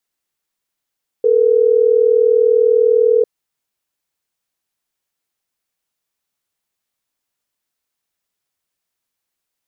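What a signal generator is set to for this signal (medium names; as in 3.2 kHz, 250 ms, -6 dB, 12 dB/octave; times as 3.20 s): call progress tone ringback tone, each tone -12 dBFS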